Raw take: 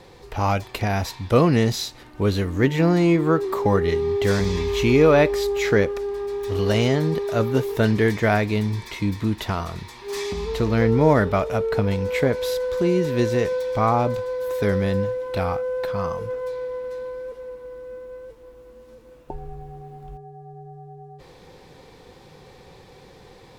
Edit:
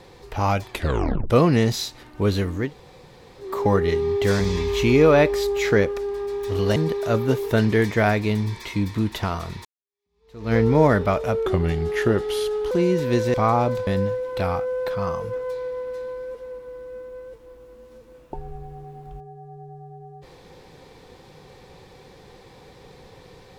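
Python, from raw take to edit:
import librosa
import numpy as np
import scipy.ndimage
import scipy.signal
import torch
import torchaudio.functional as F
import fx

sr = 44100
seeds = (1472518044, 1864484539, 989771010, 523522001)

y = fx.edit(x, sr, fx.tape_stop(start_s=0.71, length_s=0.59),
    fx.room_tone_fill(start_s=2.62, length_s=0.87, crossfade_s=0.24),
    fx.cut(start_s=6.76, length_s=0.26),
    fx.fade_in_span(start_s=9.91, length_s=0.88, curve='exp'),
    fx.speed_span(start_s=11.72, length_s=1.05, speed=0.84),
    fx.cut(start_s=13.4, length_s=0.33),
    fx.cut(start_s=14.26, length_s=0.58), tone=tone)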